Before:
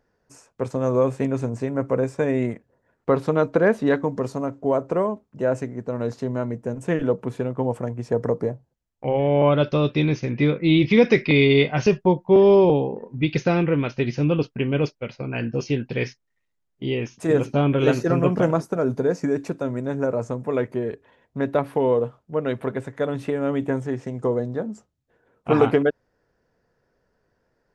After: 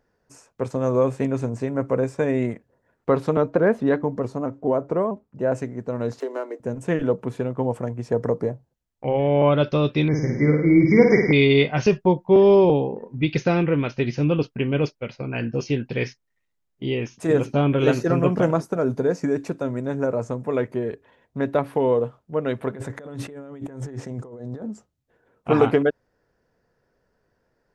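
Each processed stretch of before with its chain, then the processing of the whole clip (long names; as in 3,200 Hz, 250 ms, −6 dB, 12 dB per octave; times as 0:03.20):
0:03.37–0:05.52: high-shelf EQ 2,200 Hz −8.5 dB + pitch modulation by a square or saw wave saw up 4.6 Hz, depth 100 cents
0:06.20–0:06.60: running median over 9 samples + Chebyshev high-pass filter 290 Hz, order 6 + multiband upward and downward compressor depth 100%
0:10.08–0:11.33: linear-phase brick-wall band-stop 2,300–4,800 Hz + flutter between parallel walls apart 9.1 metres, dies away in 0.77 s
0:22.75–0:24.66: parametric band 2,700 Hz −4.5 dB 0.85 octaves + compressor whose output falls as the input rises −35 dBFS
whole clip: no processing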